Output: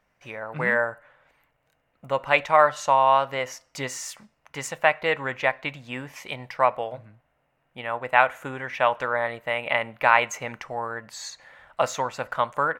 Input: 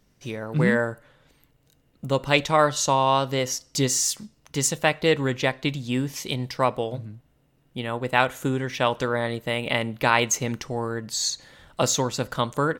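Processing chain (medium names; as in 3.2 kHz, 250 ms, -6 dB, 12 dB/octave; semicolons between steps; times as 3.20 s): high-order bell 1.2 kHz +15 dB 2.6 oct; trim -12 dB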